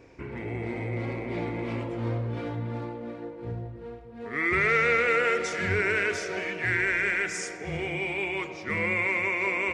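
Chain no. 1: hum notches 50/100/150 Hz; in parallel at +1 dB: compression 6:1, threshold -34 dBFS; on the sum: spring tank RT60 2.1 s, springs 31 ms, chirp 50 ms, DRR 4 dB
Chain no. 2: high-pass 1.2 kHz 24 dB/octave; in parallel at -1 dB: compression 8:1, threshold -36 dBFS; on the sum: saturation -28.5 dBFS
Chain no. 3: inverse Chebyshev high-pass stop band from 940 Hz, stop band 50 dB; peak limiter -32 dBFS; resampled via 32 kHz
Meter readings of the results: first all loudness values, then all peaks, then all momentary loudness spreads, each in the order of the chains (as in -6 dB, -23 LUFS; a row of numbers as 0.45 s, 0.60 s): -23.5 LUFS, -32.0 LUFS, -39.5 LUFS; -8.5 dBFS, -28.5 dBFS, -32.0 dBFS; 13 LU, 14 LU, 15 LU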